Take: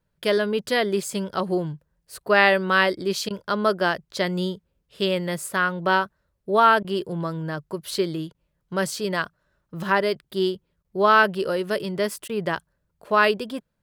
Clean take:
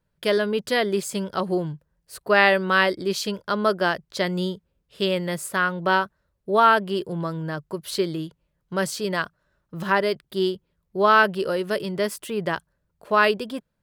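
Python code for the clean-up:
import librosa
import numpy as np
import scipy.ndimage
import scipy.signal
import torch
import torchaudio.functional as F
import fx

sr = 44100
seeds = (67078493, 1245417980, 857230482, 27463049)

y = fx.fix_interpolate(x, sr, at_s=(3.29, 6.83, 8.33, 10.83, 12.28), length_ms=13.0)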